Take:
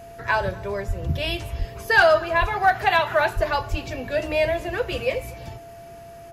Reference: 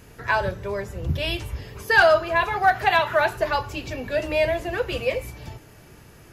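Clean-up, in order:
notch filter 680 Hz, Q 30
high-pass at the plosives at 0:00.87/0:01.58/0:02.40/0:03.35/0:03.70
echo removal 242 ms −24 dB

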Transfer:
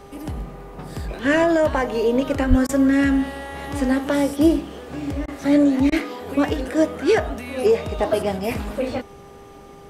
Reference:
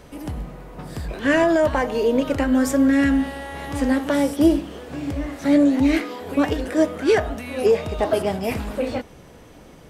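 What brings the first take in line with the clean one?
hum removal 399.5 Hz, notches 3
0:02.49–0:02.61: high-pass filter 140 Hz 24 dB per octave
repair the gap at 0:02.67/0:05.26/0:05.90, 19 ms

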